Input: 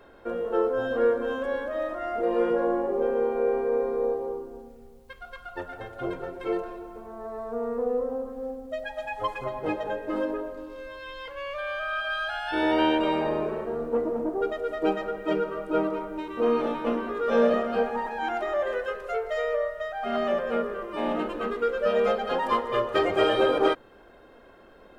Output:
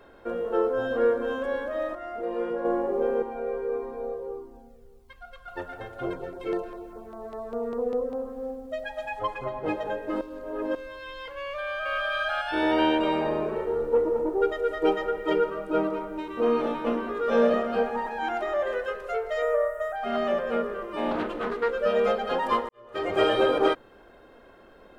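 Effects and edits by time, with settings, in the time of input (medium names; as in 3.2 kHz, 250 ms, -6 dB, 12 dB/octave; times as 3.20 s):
1.95–2.65 s: gain -5.5 dB
3.22–5.48 s: Shepard-style flanger falling 1.6 Hz
6.13–8.18 s: LFO notch saw down 5 Hz 580–3700 Hz
9.19–9.68 s: treble shelf 4.5 kHz -7.5 dB
10.21–10.75 s: reverse
11.40–11.96 s: echo throw 450 ms, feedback 20%, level -0.5 dB
13.55–15.50 s: comb 2.2 ms
19.42–19.96 s: FFT filter 130 Hz 0 dB, 220 Hz -16 dB, 310 Hz +2 dB, 1.5 kHz +4 dB, 2.1 kHz -3 dB, 4.4 kHz -13 dB, 8 kHz +9 dB
21.11–21.71 s: loudspeaker Doppler distortion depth 0.35 ms
22.69–23.16 s: fade in quadratic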